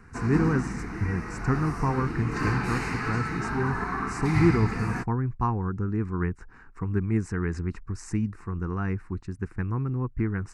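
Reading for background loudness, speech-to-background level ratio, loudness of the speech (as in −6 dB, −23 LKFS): −30.5 LKFS, 1.5 dB, −29.0 LKFS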